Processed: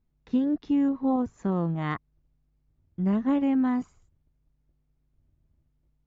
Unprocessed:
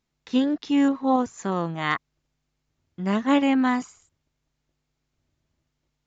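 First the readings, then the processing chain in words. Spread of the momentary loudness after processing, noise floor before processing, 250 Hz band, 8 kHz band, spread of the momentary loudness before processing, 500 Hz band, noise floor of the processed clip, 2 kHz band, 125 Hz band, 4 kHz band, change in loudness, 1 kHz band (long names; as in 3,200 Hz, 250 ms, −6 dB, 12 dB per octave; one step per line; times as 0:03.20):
8 LU, −79 dBFS, −2.0 dB, can't be measured, 8 LU, −5.5 dB, −72 dBFS, −11.5 dB, +3.0 dB, below −15 dB, −3.0 dB, −8.5 dB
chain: spectral tilt −4 dB per octave
downward compressor, threshold −14 dBFS, peak gain reduction 5.5 dB
level −6.5 dB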